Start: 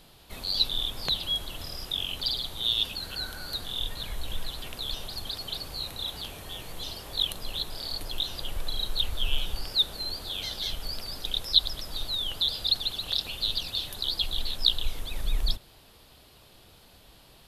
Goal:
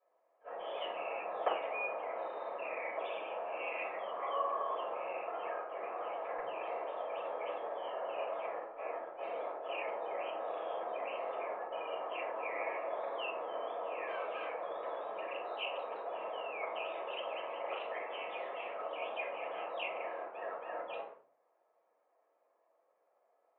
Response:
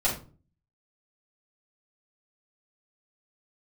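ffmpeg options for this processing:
-filter_complex "[0:a]highpass=f=700:w=0.5412,highpass=f=700:w=1.3066,agate=range=0.0794:threshold=0.00631:ratio=16:detection=peak,lowpass=f=1700:w=0.5412,lowpass=f=1700:w=1.3066[s0];[1:a]atrim=start_sample=2205,asetrate=52920,aresample=44100[s1];[s0][s1]afir=irnorm=-1:irlink=0,asetrate=32667,aresample=44100,volume=1.19"

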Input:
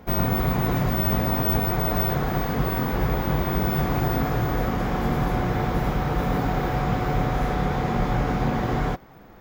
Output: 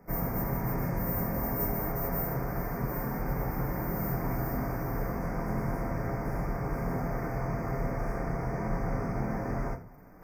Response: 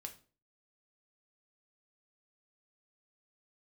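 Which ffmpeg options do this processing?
-filter_complex "[0:a]acrossover=split=120|5200[s0][s1][s2];[s2]acrusher=bits=3:mode=log:mix=0:aa=0.000001[s3];[s0][s1][s3]amix=inputs=3:normalize=0[s4];[1:a]atrim=start_sample=2205[s5];[s4][s5]afir=irnorm=-1:irlink=0,asetrate=40517,aresample=44100,asuperstop=centerf=3400:order=12:qfactor=1.4,areverse,acompressor=mode=upward:threshold=0.00708:ratio=2.5,areverse,volume=0.631"

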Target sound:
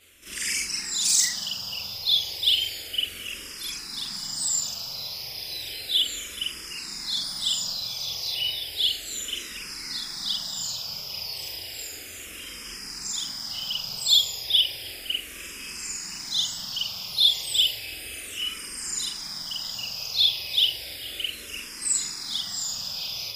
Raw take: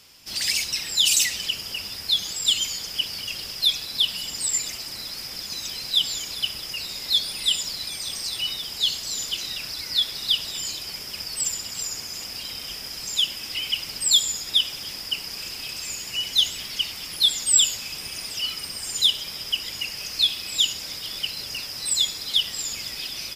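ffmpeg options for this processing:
-filter_complex "[0:a]afftfilt=real='re':imag='-im':win_size=4096:overlap=0.75,asplit=2[s0][s1];[s1]afreqshift=-0.33[s2];[s0][s2]amix=inputs=2:normalize=1,volume=1.88"

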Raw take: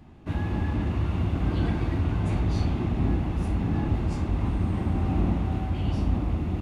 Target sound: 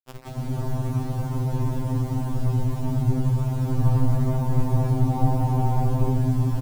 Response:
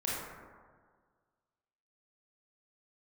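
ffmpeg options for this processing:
-filter_complex "[0:a]asettb=1/sr,asplit=3[s0][s1][s2];[s0]atrim=end=3.784[s3];[s1]atrim=start=3.78:end=6.08,asetpts=PTS-STARTPTS,afade=t=in:d=0.004:c=qsin,afade=t=out:st=2.296:d=0.004:c=qsin,acontrast=57[s4];[s2]atrim=start=6.076[s5];[s3][s4]acrossfade=d=0.004:c1=hsin:c2=qsin[s6];[s6][s5]acrossfade=d=0.004:c1=qsin:c2=hsin,aecho=1:1:514:0.299,acrusher=samples=20:mix=1:aa=0.000001:lfo=1:lforange=20:lforate=0.32,asoftclip=type=tanh:threshold=0.0631,lowpass=f=900:t=q:w=3.6,aemphasis=mode=reproduction:type=bsi[s7];[1:a]atrim=start_sample=2205,asetrate=41454,aresample=44100[s8];[s7][s8]afir=irnorm=-1:irlink=0,aeval=exprs='sgn(val(0))*max(abs(val(0))-0.0376,0)':c=same,acrusher=bits=5:mix=0:aa=0.000001,lowshelf=f=220:g=7.5,acompressor=mode=upward:threshold=0.178:ratio=2.5,afftfilt=real='re*2.45*eq(mod(b,6),0)':imag='im*2.45*eq(mod(b,6),0)':win_size=2048:overlap=0.75,volume=0.422"

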